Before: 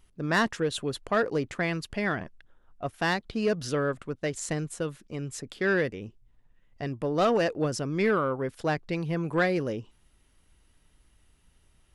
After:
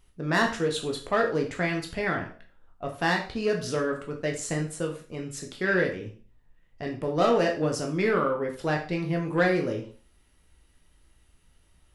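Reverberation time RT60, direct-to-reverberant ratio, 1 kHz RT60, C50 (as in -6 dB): 0.40 s, 1.0 dB, 0.40 s, 9.0 dB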